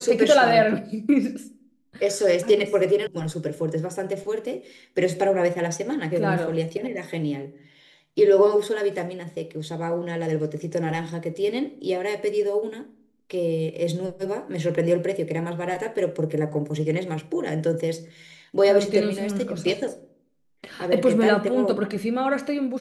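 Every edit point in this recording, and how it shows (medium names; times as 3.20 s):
3.07 s: sound stops dead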